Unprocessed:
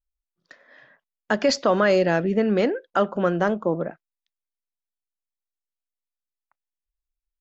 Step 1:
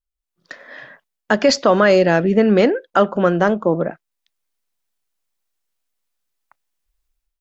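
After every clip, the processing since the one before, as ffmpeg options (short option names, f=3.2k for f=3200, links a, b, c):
-af "dynaudnorm=f=160:g=5:m=15dB,volume=-1dB"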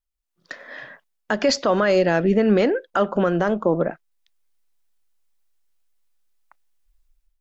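-af "asubboost=boost=3.5:cutoff=51,alimiter=limit=-9dB:level=0:latency=1:release=133"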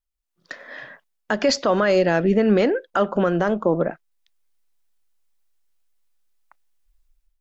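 -af anull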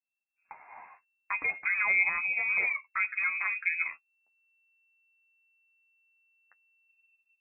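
-af "flanger=delay=8.9:depth=3.3:regen=24:speed=0.63:shape=triangular,lowpass=f=2.3k:t=q:w=0.5098,lowpass=f=2.3k:t=q:w=0.6013,lowpass=f=2.3k:t=q:w=0.9,lowpass=f=2.3k:t=q:w=2.563,afreqshift=-2700,volume=-7dB"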